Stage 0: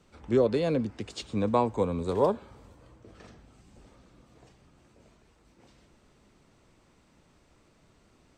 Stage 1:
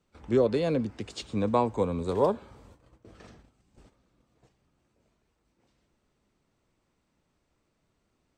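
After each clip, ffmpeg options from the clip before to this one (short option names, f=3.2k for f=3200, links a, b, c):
-af "agate=range=-12dB:threshold=-53dB:ratio=16:detection=peak"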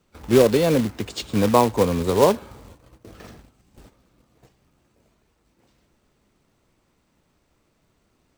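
-af "acrusher=bits=3:mode=log:mix=0:aa=0.000001,volume=8dB"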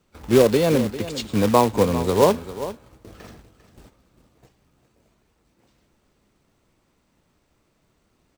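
-af "aecho=1:1:398:0.211"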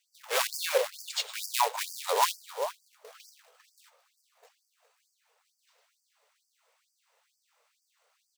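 -af "afftfilt=real='re*gte(b*sr/1024,410*pow(4600/410,0.5+0.5*sin(2*PI*2.2*pts/sr)))':imag='im*gte(b*sr/1024,410*pow(4600/410,0.5+0.5*sin(2*PI*2.2*pts/sr)))':win_size=1024:overlap=0.75"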